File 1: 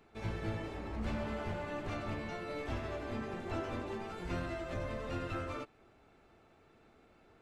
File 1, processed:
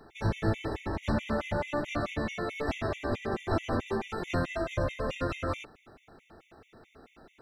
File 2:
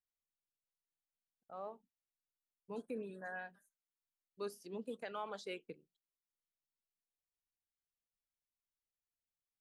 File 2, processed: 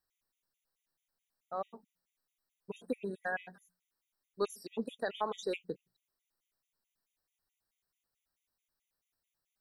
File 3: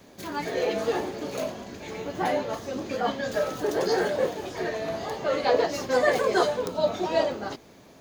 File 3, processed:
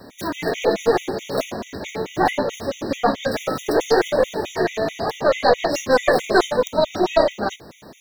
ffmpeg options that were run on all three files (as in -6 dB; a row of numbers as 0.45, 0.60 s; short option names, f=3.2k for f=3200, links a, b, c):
-filter_complex "[0:a]asplit=2[a][b];[b]alimiter=limit=-18.5dB:level=0:latency=1:release=126,volume=1.5dB[c];[a][c]amix=inputs=2:normalize=0,aeval=exprs='0.501*(cos(1*acos(clip(val(0)/0.501,-1,1)))-cos(1*PI/2))+0.112*(cos(2*acos(clip(val(0)/0.501,-1,1)))-cos(2*PI/2))':c=same,equalizer=f=8k:w=6.8:g=-2.5,bandreject=f=60:t=h:w=6,bandreject=f=120:t=h:w=6,bandreject=f=180:t=h:w=6,afftfilt=real='re*gt(sin(2*PI*4.6*pts/sr)*(1-2*mod(floor(b*sr/1024/1900),2)),0)':imag='im*gt(sin(2*PI*4.6*pts/sr)*(1-2*mod(floor(b*sr/1024/1900),2)),0)':win_size=1024:overlap=0.75,volume=4dB"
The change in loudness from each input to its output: +7.5, +7.0, +6.0 LU